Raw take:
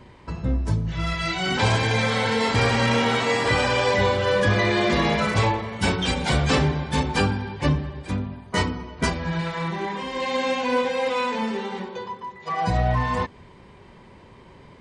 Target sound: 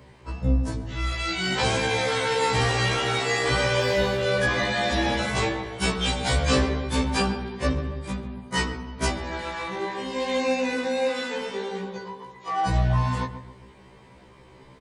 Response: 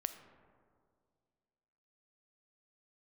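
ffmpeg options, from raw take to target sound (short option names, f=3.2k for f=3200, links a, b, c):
-filter_complex "[0:a]highshelf=f=8k:g=10,bandreject=f=50:t=h:w=6,bandreject=f=100:t=h:w=6,bandreject=f=150:t=h:w=6,bandreject=f=200:t=h:w=6,bandreject=f=250:t=h:w=6,asplit=2[a][b];[b]adelay=137,lowpass=f=1.2k:p=1,volume=-9.5dB,asplit=2[c][d];[d]adelay=137,lowpass=f=1.2k:p=1,volume=0.4,asplit=2[e][f];[f]adelay=137,lowpass=f=1.2k:p=1,volume=0.4,asplit=2[g][h];[h]adelay=137,lowpass=f=1.2k:p=1,volume=0.4[i];[a][c][e][g][i]amix=inputs=5:normalize=0,asettb=1/sr,asplit=3[j][k][l];[j]atrim=end=3.814[m];[k]atrim=start=3.81:end=4.23,asetpts=PTS-STARTPTS,afade=t=in:d=0.004:c=qsin,afade=t=out:st=0.416:d=0.004:c=qsin,adynamicsmooth=sensitivity=6.5:basefreq=5.9k[n];[l]atrim=start=4.226[o];[m][n]acrossfade=d=0.004:c1=hsin:c2=qsin[p];[p][o]acrossfade=d=0.004:c1=qsin:c2=hsin,asettb=1/sr,asplit=3[q][r][s];[q]atrim=end=10.384[t];[r]atrim=start=10.38:end=11.16,asetpts=PTS-STARTPTS,afade=t=in:d=0.004:c=qsin,afade=t=out:st=0.776:d=0.004:c=qsin,asuperstop=centerf=3200:order=4:qfactor=7.2[u];[s]atrim=start=11.156[v];[t][u]acrossfade=d=0.004:c1=hsin:c2=qsin[w];[w][v]acrossfade=d=0.004:c1=qsin:c2=hsin,afftfilt=real='re*1.73*eq(mod(b,3),0)':imag='im*1.73*eq(mod(b,3),0)':win_size=2048:overlap=0.75"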